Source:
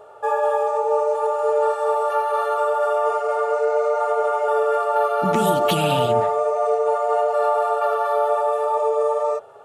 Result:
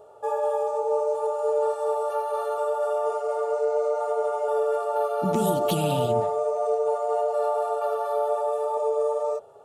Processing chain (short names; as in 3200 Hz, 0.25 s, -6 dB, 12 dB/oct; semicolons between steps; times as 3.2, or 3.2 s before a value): bell 1800 Hz -12.5 dB 1.7 oct; gain -2 dB